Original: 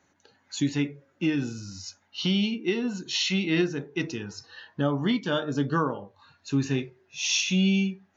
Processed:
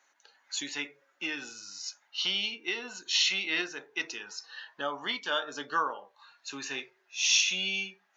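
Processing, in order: HPF 870 Hz 12 dB/oct; gain +1.5 dB

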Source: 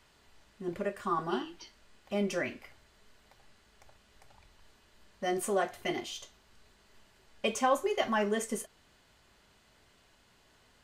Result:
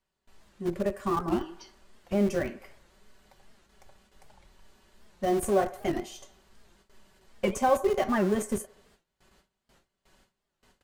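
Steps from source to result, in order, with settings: bell 2700 Hz -4.5 dB 2.8 oct; on a send: band-limited delay 81 ms, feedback 57%, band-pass 980 Hz, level -17 dB; on the sum: dynamic EQ 3700 Hz, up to -6 dB, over -53 dBFS, Q 0.84; comb 5.3 ms, depth 43%; gate with hold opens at -54 dBFS; in parallel at -5 dB: Schmitt trigger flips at -30 dBFS; on the sum: record warp 78 rpm, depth 160 cents; gain +3 dB

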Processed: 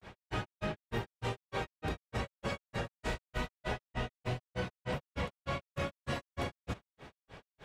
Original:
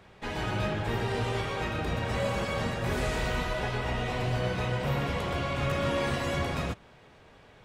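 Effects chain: grains 0.158 s, grains 3.3/s, pitch spread up and down by 0 st; compressor 4:1, threshold -40 dBFS, peak gain reduction 11.5 dB; gain +6 dB

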